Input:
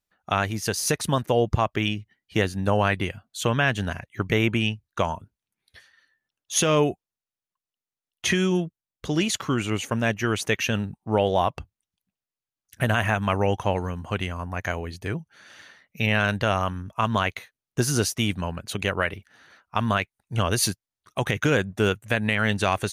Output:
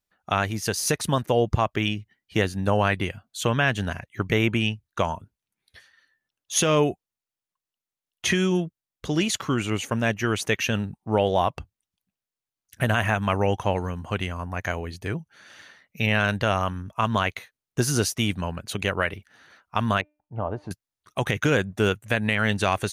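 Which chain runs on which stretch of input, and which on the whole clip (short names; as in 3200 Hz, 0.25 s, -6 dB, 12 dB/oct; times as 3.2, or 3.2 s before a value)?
20.01–20.71 synth low-pass 820 Hz, resonance Q 2.6 + resonator 300 Hz, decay 0.36 s
whole clip: dry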